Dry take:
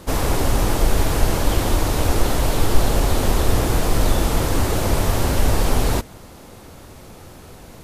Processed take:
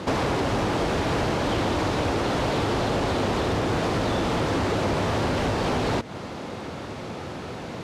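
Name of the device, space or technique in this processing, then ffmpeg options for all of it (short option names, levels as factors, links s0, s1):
AM radio: -af "highpass=120,lowpass=4100,acompressor=threshold=0.0355:ratio=6,asoftclip=type=tanh:threshold=0.0562,volume=2.82"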